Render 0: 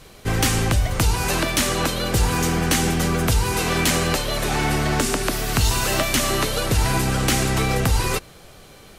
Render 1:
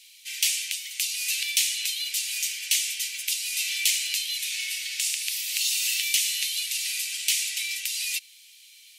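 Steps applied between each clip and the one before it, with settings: steep high-pass 2.3 kHz 48 dB/octave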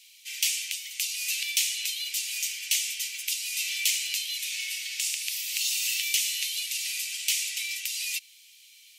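fifteen-band graphic EQ 1.6 kHz -5 dB, 4 kHz -3 dB, 10 kHz -4 dB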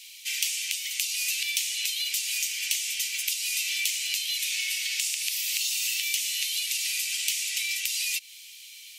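compression 5:1, threshold -34 dBFS, peak gain reduction 12.5 dB; trim +8 dB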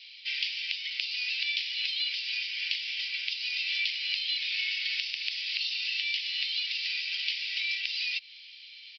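resampled via 11.025 kHz

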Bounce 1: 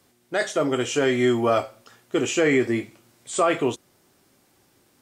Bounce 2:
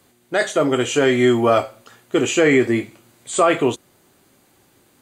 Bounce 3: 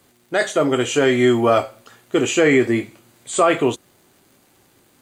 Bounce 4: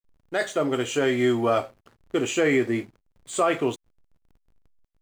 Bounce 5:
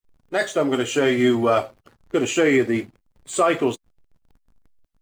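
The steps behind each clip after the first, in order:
band-stop 5.4 kHz, Q 5.8; trim +5 dB
crackle 150 per s -45 dBFS
hysteresis with a dead band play -36 dBFS; trim -6.5 dB
coarse spectral quantiser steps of 15 dB; trim +4 dB

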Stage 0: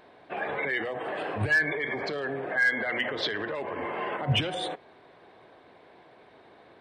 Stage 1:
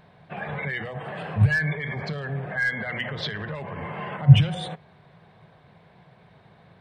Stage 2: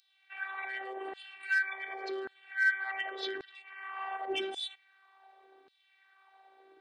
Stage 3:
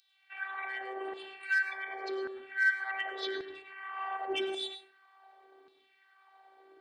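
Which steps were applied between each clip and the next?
resonant low shelf 220 Hz +10.5 dB, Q 3; trim -1 dB
robot voice 388 Hz; LFO high-pass saw down 0.88 Hz 270–4300 Hz; trim -5 dB
plate-style reverb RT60 0.61 s, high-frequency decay 0.45×, pre-delay 85 ms, DRR 7.5 dB

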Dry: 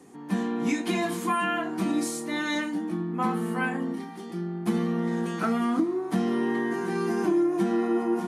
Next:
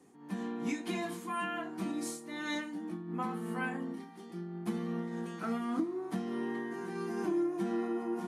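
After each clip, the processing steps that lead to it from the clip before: random flutter of the level, depth 65%; trim -5.5 dB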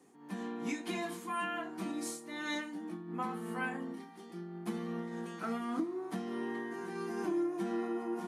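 bass shelf 160 Hz -9 dB

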